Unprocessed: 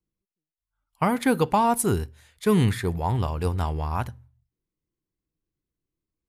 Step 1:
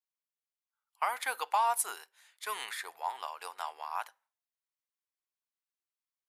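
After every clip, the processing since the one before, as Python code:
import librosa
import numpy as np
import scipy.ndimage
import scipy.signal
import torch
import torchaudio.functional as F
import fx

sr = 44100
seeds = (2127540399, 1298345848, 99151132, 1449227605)

y = scipy.signal.sosfilt(scipy.signal.butter(4, 780.0, 'highpass', fs=sr, output='sos'), x)
y = F.gain(torch.from_numpy(y), -4.5).numpy()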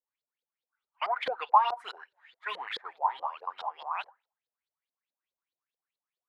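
y = fx.filter_lfo_lowpass(x, sr, shape='saw_up', hz=4.7, low_hz=460.0, high_hz=4400.0, q=7.2)
y = fx.flanger_cancel(y, sr, hz=1.3, depth_ms=7.6)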